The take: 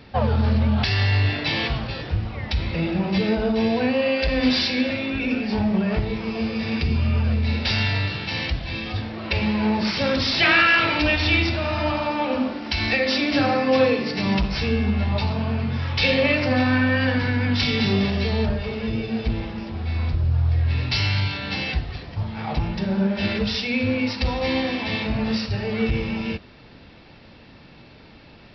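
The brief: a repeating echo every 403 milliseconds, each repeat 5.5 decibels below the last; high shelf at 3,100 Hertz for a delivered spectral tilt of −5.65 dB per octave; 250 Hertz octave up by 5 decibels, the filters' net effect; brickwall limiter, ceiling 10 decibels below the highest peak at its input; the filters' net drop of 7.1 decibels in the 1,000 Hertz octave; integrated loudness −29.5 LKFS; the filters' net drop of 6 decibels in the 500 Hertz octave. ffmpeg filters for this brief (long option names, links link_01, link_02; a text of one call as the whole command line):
ffmpeg -i in.wav -af "equalizer=frequency=250:width_type=o:gain=7.5,equalizer=frequency=500:width_type=o:gain=-7,equalizer=frequency=1000:width_type=o:gain=-7,highshelf=frequency=3100:gain=-6.5,alimiter=limit=-16.5dB:level=0:latency=1,aecho=1:1:403|806|1209|1612|2015|2418|2821:0.531|0.281|0.149|0.079|0.0419|0.0222|0.0118,volume=-6dB" out.wav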